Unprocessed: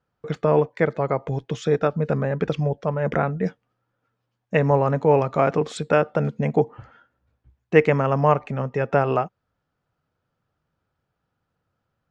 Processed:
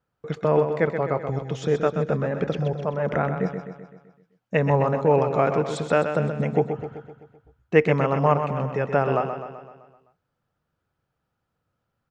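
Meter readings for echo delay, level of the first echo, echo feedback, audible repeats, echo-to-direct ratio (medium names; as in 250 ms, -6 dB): 128 ms, -8.0 dB, 55%, 6, -6.5 dB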